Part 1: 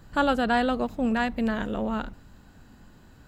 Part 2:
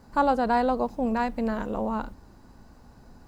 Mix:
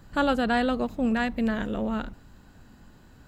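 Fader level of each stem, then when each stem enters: −0.5, −14.0 decibels; 0.00, 0.00 seconds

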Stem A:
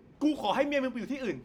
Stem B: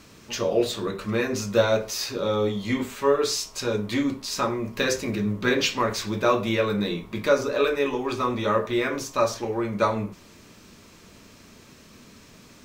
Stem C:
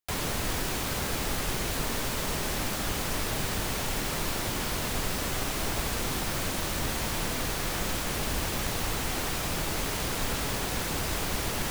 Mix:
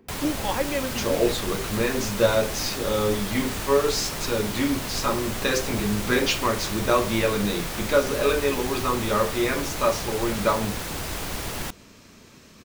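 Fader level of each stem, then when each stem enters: +1.0, 0.0, −0.5 decibels; 0.00, 0.65, 0.00 seconds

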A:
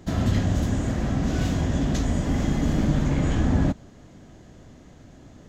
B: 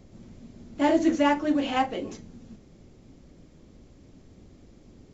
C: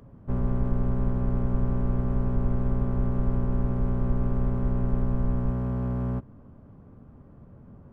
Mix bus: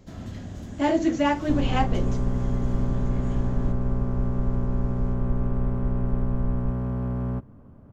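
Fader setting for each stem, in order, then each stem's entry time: −14.5, −0.5, +0.5 decibels; 0.00, 0.00, 1.20 seconds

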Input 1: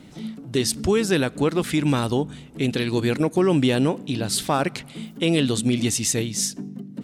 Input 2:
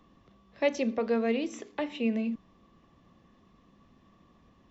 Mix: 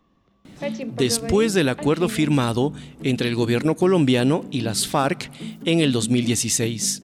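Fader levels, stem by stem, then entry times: +1.5, −2.5 decibels; 0.45, 0.00 seconds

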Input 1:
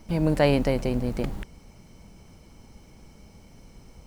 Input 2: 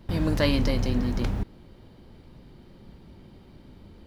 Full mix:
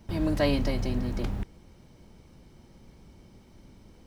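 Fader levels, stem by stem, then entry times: −8.0, −5.5 decibels; 0.00, 0.00 seconds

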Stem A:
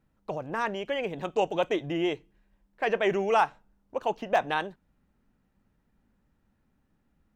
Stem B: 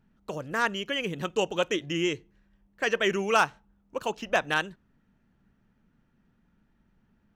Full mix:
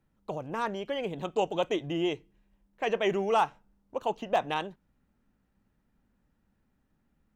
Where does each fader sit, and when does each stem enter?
−2.5, −14.0 decibels; 0.00, 0.00 seconds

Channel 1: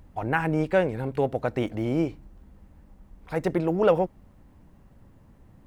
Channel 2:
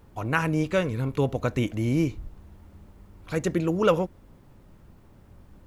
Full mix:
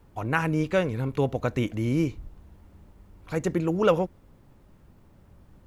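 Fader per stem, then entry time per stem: −10.5, −3.0 decibels; 0.00, 0.00 seconds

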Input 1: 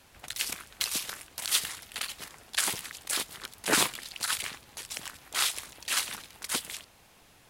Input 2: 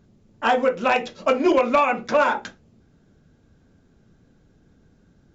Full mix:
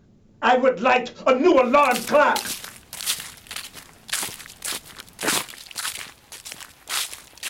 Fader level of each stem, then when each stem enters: +2.0, +2.0 decibels; 1.55, 0.00 seconds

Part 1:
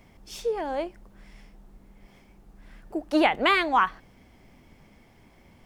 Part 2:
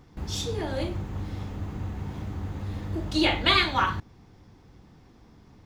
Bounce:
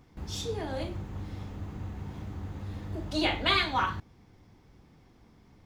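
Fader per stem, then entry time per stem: −13.0, −5.0 decibels; 0.00, 0.00 seconds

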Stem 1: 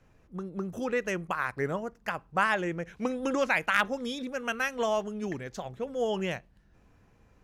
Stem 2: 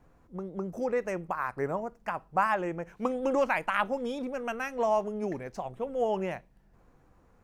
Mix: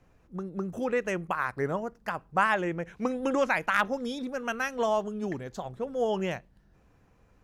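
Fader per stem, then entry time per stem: −2.0, −7.0 decibels; 0.00, 0.00 seconds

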